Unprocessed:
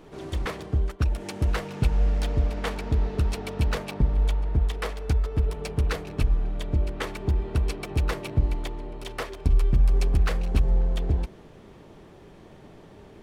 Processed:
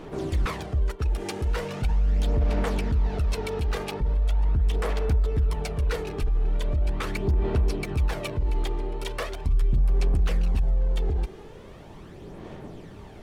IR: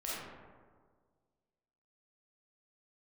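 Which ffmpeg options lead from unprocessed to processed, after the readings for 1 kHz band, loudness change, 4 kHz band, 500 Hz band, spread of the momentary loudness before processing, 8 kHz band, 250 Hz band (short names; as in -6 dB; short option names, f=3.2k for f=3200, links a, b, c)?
+1.0 dB, 0.0 dB, -0.5 dB, +2.0 dB, 8 LU, 0.0 dB, -0.5 dB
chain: -af "alimiter=level_in=0.5dB:limit=-24dB:level=0:latency=1:release=47,volume=-0.5dB,aphaser=in_gain=1:out_gain=1:delay=2.5:decay=0.44:speed=0.4:type=sinusoidal,volume=3.5dB"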